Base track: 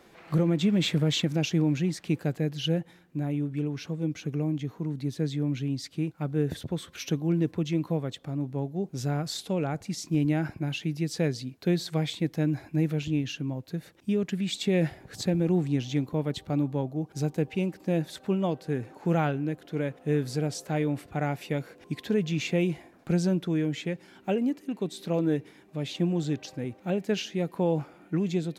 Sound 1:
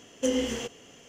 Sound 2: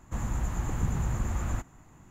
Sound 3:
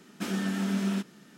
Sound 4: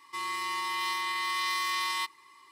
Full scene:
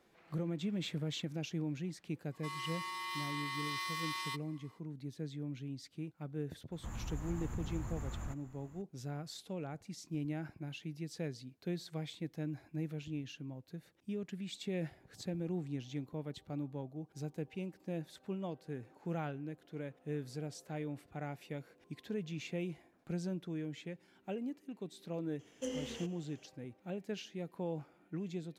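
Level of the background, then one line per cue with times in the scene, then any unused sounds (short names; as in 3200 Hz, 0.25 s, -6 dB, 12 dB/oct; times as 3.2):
base track -13.5 dB
2.3 add 4 -9.5 dB, fades 0.05 s
6.72 add 2 -6.5 dB + compressor 1.5:1, threshold -40 dBFS
25.39 add 1 -13.5 dB
not used: 3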